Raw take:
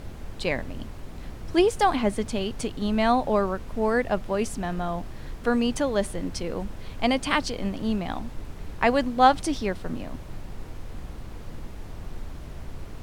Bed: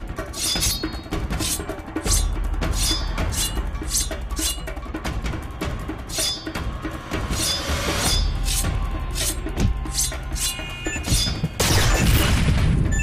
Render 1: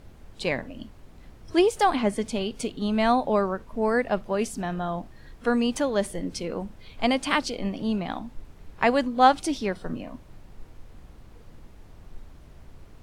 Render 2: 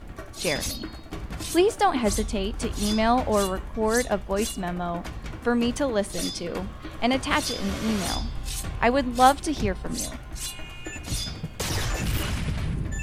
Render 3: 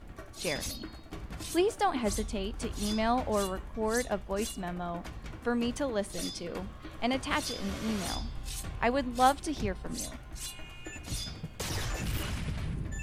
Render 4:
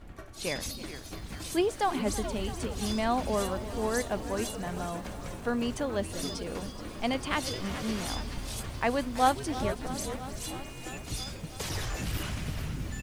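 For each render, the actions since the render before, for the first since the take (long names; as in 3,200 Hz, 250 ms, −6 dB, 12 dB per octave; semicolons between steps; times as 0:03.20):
noise reduction from a noise print 10 dB
mix in bed −9.5 dB
level −7 dB
on a send: echo with shifted repeats 425 ms, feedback 63%, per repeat −150 Hz, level −11.5 dB; on the sum: feedback echo at a low word length 329 ms, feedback 80%, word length 8 bits, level −15 dB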